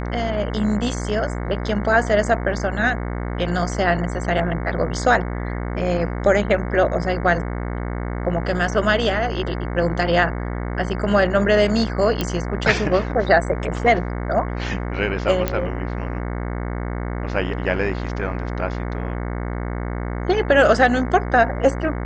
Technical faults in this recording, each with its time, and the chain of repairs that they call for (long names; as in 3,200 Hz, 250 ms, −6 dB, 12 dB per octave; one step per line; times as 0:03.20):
mains buzz 60 Hz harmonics 37 −26 dBFS
0:12.21: click −7 dBFS
0:15.48: click −7 dBFS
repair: click removal
hum removal 60 Hz, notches 37